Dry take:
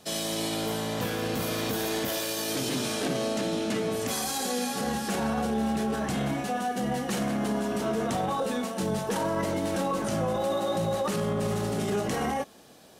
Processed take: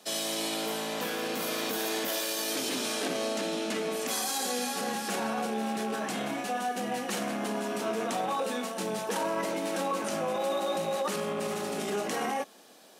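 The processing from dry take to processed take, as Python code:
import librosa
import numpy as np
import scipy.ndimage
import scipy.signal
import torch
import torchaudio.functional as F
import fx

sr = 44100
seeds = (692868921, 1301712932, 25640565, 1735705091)

y = fx.rattle_buzz(x, sr, strikes_db=-38.0, level_db=-36.0)
y = scipy.signal.sosfilt(scipy.signal.butter(4, 190.0, 'highpass', fs=sr, output='sos'), y)
y = fx.low_shelf(y, sr, hz=370.0, db=-6.5)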